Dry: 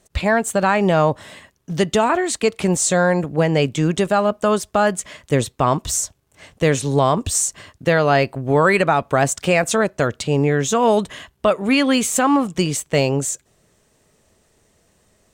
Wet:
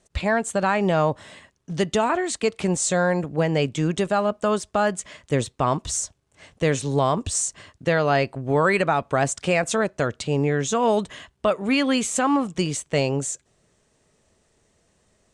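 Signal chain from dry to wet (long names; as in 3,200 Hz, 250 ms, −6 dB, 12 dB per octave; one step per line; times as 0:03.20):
low-pass filter 9,600 Hz 24 dB per octave
level −4.5 dB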